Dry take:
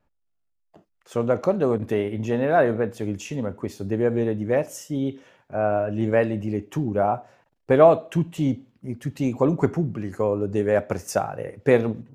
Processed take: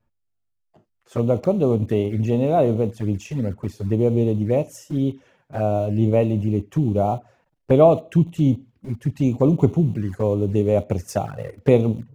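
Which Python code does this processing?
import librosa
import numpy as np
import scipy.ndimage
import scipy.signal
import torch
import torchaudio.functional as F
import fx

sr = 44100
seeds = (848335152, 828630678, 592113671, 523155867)

p1 = fx.peak_eq(x, sr, hz=68.0, db=9.0, octaves=2.9)
p2 = np.where(np.abs(p1) >= 10.0 ** (-29.0 / 20.0), p1, 0.0)
p3 = p1 + (p2 * 10.0 ** (-10.5 / 20.0))
p4 = fx.env_flanger(p3, sr, rest_ms=8.9, full_db=-15.5)
y = p4 * 10.0 ** (-1.0 / 20.0)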